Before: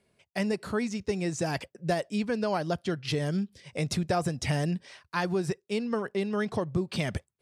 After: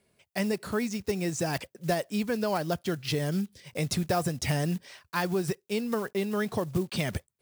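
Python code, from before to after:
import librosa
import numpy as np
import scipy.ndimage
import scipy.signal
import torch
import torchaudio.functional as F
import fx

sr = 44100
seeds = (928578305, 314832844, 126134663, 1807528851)

y = fx.block_float(x, sr, bits=5)
y = fx.high_shelf(y, sr, hz=8800.0, db=7.0)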